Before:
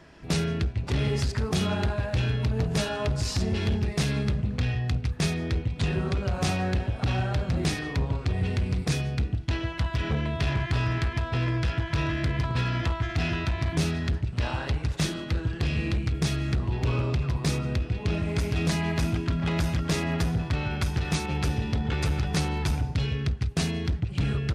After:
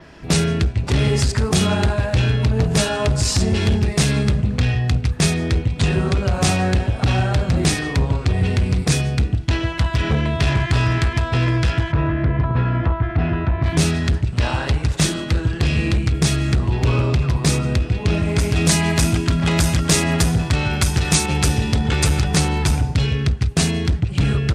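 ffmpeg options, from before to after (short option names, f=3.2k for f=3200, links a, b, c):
-filter_complex "[0:a]asettb=1/sr,asplit=3[a][b][c];[a]atrim=end=2.144[d];[b]atrim=start=2.14:end=2.62,asetpts=PTS-STARTPTS,afade=t=in:d=0.004:c=qsin,afade=t=out:st=0.476:d=0.004:c=qsin,highshelf=f=10k:g=-6[e];[c]atrim=start=2.616[f];[d][e]acrossfade=d=0.004:c1=hsin:c2=qsin[g];[g][f]acrossfade=d=0.004:c1=qsin:c2=hsin,asplit=3[h][i][j];[h]afade=t=out:st=11.91:d=0.02[k];[i]lowpass=1.4k,afade=t=in:st=11.91:d=0.02,afade=t=out:st=13.63:d=0.02[l];[j]afade=t=in:st=13.63:d=0.02[m];[k][l][m]amix=inputs=3:normalize=0,asettb=1/sr,asplit=3[n][o][p];[n]atrim=end=18.664[q];[o]atrim=start=18.66:end=22.24,asetpts=PTS-STARTPTS,afade=t=in:d=0.004:c=qsin,afade=t=out:st=3.576:d=0.004:c=qsin,highshelf=f=4.2k:g=6.5[r];[p]atrim=start=22.236[s];[q][r]acrossfade=d=0.004:c1=hsin:c2=qsin[t];[t][s]acrossfade=d=0.004:c1=qsin:c2=hsin,adynamicequalizer=threshold=0.002:dfrequency=8200:dqfactor=1.5:tfrequency=8200:tqfactor=1.5:attack=5:release=100:ratio=0.375:range=4:mode=boostabove:tftype=bell,volume=8.5dB"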